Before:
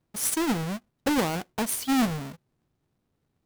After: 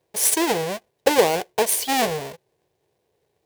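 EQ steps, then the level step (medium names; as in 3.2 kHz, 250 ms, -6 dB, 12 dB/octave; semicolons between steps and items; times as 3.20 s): high-pass 60 Hz; resonant low shelf 330 Hz -8.5 dB, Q 3; peaking EQ 1.3 kHz -14.5 dB 0.24 oct; +8.0 dB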